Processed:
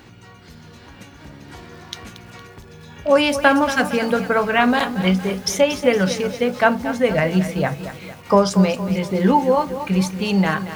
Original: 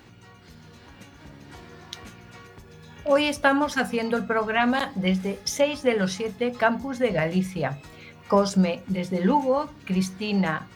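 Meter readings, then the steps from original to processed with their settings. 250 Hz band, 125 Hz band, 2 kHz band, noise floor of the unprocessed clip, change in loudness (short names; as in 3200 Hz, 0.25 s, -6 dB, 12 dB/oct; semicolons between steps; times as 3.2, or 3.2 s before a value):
+5.5 dB, +6.0 dB, +6.0 dB, -49 dBFS, +6.0 dB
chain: lo-fi delay 0.231 s, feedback 55%, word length 7-bit, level -11.5 dB; gain +5.5 dB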